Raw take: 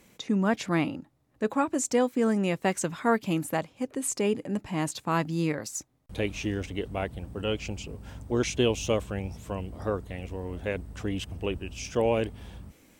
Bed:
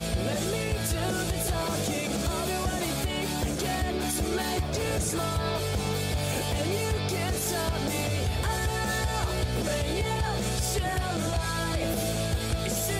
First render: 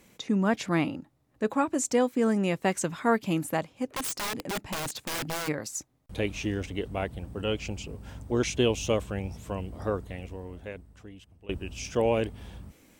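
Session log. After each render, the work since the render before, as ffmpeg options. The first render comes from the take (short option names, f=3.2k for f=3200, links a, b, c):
-filter_complex "[0:a]asplit=3[a][b][c];[a]afade=t=out:st=3.85:d=0.02[d];[b]aeval=exprs='(mod(21.1*val(0)+1,2)-1)/21.1':c=same,afade=t=in:st=3.85:d=0.02,afade=t=out:st=5.47:d=0.02[e];[c]afade=t=in:st=5.47:d=0.02[f];[d][e][f]amix=inputs=3:normalize=0,asplit=2[g][h];[g]atrim=end=11.49,asetpts=PTS-STARTPTS,afade=t=out:st=10.04:d=1.45:c=qua:silence=0.1[i];[h]atrim=start=11.49,asetpts=PTS-STARTPTS,afade=t=in:d=0.004:c=hsin:silence=0.1[j];[i][j]concat=n=2:v=0:a=1"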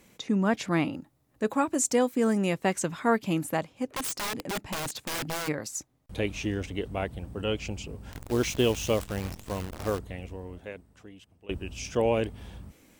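-filter_complex "[0:a]asettb=1/sr,asplit=3[a][b][c];[a]atrim=end=0.934[d];[b]atrim=start=0.93:end=2.54,asetpts=PTS-STARTPTS,afade=t=in:d=0.004:c=qsin,afade=t=out:st=1.606:d=0.004:c=qsin,highshelf=f=7.9k:g=8.5[e];[c]atrim=start=2.536[f];[d][e]acrossfade=d=0.004:c1=hsin:c2=qsin[g];[g][f]acrossfade=d=0.004:c1=qsin:c2=hsin,asettb=1/sr,asplit=3[h][i][j];[h]atrim=end=8.124[k];[i]atrim=start=8.12:end=9.99,asetpts=PTS-STARTPTS,afade=t=in:d=0.004:c=qsin,afade=t=out:st=1.866:d=0.004:c=qsin,acrusher=bits=7:dc=4:mix=0:aa=0.000001[l];[j]atrim=start=9.986[m];[k][l]acrossfade=d=0.004:c1=hsin:c2=qsin[n];[n][m]acrossfade=d=0.004:c1=qsin:c2=hsin,asettb=1/sr,asplit=3[o][p][q];[o]atrim=end=10.584[r];[p]atrim=start=10.58:end=11.51,asetpts=PTS-STARTPTS,afade=t=in:d=0.004:c=qsin,afade=t=out:st=0.926:d=0.004:c=qsin,highpass=f=160:p=1[s];[q]atrim=start=11.506[t];[r][s]acrossfade=d=0.004:c1=hsin:c2=qsin[u];[u][t]acrossfade=d=0.004:c1=qsin:c2=hsin"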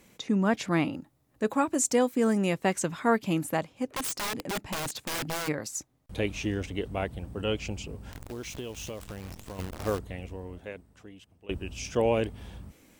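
-filter_complex "[0:a]asettb=1/sr,asplit=3[a][b][c];[a]atrim=end=8.024[d];[b]atrim=start=8.02:end=9.59,asetpts=PTS-STARTPTS,afade=t=in:d=0.004:c=qsin,afade=t=out:st=1.566:d=0.004:c=qsin,acompressor=threshold=-36dB:ratio=4:attack=3.2:release=140:knee=1:detection=peak[e];[c]atrim=start=9.586[f];[d][e]acrossfade=d=0.004:c1=hsin:c2=qsin[g];[g][f]acrossfade=d=0.004:c1=qsin:c2=hsin"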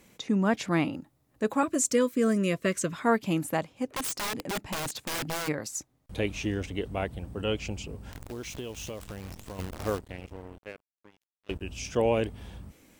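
-filter_complex "[0:a]asettb=1/sr,asplit=3[a][b][c];[a]atrim=end=1.634[d];[b]atrim=start=1.63:end=2.93,asetpts=PTS-STARTPTS,afade=t=in:d=0.004:c=qsin,afade=t=out:st=1.296:d=0.004:c=qsin,asuperstop=centerf=830:order=20:qfactor=2.8[e];[c]atrim=start=2.926[f];[d][e]acrossfade=d=0.004:c1=hsin:c2=qsin[g];[g][f]acrossfade=d=0.004:c1=qsin:c2=hsin,asettb=1/sr,asplit=3[h][i][j];[h]atrim=end=9.874[k];[i]atrim=start=9.87:end=11.61,asetpts=PTS-STARTPTS,afade=t=in:d=0.004:c=qsin,afade=t=out:st=1.736:d=0.004:c=qsin,aeval=exprs='sgn(val(0))*max(abs(val(0))-0.00596,0)':c=same[l];[j]atrim=start=11.606[m];[k][l]acrossfade=d=0.004:c1=hsin:c2=qsin[n];[n][m]acrossfade=d=0.004:c1=qsin:c2=hsin"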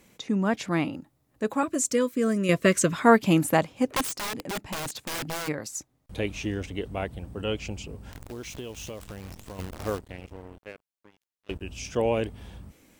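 -filter_complex "[0:a]asplit=3[a][b][c];[a]atrim=end=2.492[d];[b]atrim=start=2.488:end=4.022,asetpts=PTS-STARTPTS,volume=7dB[e];[c]atrim=start=4.018[f];[d][e]acrossfade=d=0.004:c1=hsin:c2=hsin[g];[g][f]acrossfade=d=0.004:c1=hsin:c2=hsin"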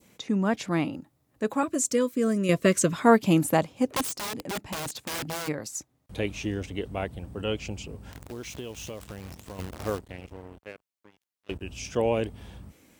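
-af "highpass=49,adynamicequalizer=threshold=0.00794:dfrequency=1800:dqfactor=0.93:tfrequency=1800:tqfactor=0.93:attack=5:release=100:ratio=0.375:range=2:mode=cutabove:tftype=bell"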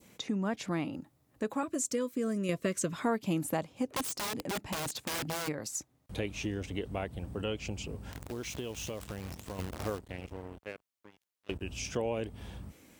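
-af "acompressor=threshold=-33dB:ratio=2.5"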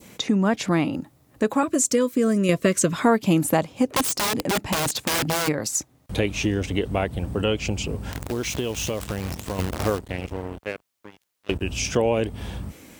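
-af "volume=12dB"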